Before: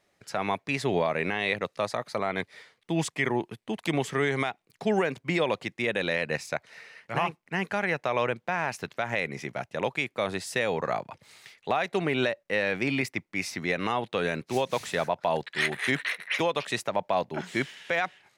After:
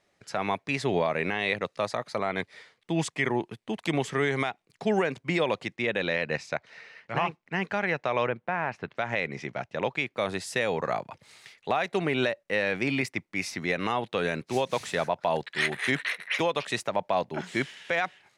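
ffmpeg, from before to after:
-af "asetnsamples=n=441:p=0,asendcmd='5.76 lowpass f 5500;8.27 lowpass f 2300;8.95 lowpass f 5500;10.17 lowpass f 12000',lowpass=9.7k"

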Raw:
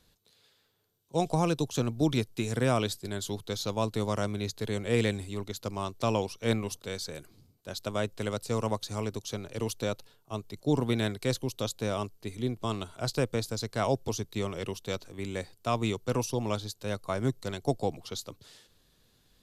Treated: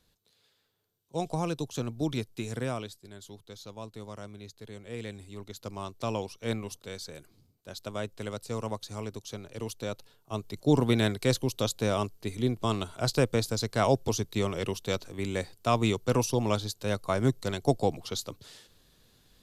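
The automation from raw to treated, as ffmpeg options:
-af "volume=12dB,afade=t=out:st=2.53:d=0.4:silence=0.375837,afade=t=in:st=5.01:d=0.7:silence=0.375837,afade=t=in:st=9.84:d=0.75:silence=0.421697"

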